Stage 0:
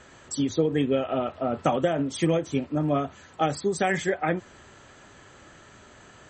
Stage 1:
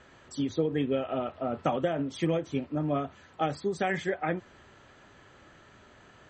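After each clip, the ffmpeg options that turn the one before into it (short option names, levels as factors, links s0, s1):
-af "lowpass=4800,volume=0.596"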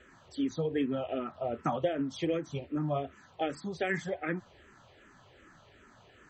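-filter_complex "[0:a]asplit=2[s0][s1];[s1]afreqshift=-2.6[s2];[s0][s2]amix=inputs=2:normalize=1"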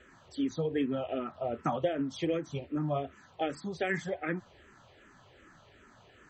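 -af anull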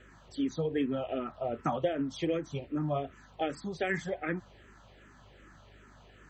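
-af "aeval=exprs='val(0)+0.00112*(sin(2*PI*50*n/s)+sin(2*PI*2*50*n/s)/2+sin(2*PI*3*50*n/s)/3+sin(2*PI*4*50*n/s)/4+sin(2*PI*5*50*n/s)/5)':c=same"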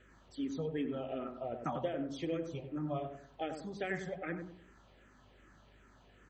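-filter_complex "[0:a]asplit=2[s0][s1];[s1]adelay=96,lowpass=f=900:p=1,volume=0.562,asplit=2[s2][s3];[s3]adelay=96,lowpass=f=900:p=1,volume=0.38,asplit=2[s4][s5];[s5]adelay=96,lowpass=f=900:p=1,volume=0.38,asplit=2[s6][s7];[s7]adelay=96,lowpass=f=900:p=1,volume=0.38,asplit=2[s8][s9];[s9]adelay=96,lowpass=f=900:p=1,volume=0.38[s10];[s0][s2][s4][s6][s8][s10]amix=inputs=6:normalize=0,volume=0.473"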